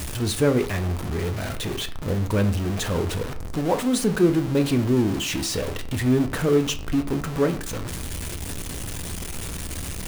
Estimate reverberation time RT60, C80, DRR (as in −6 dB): 0.50 s, 18.0 dB, 7.0 dB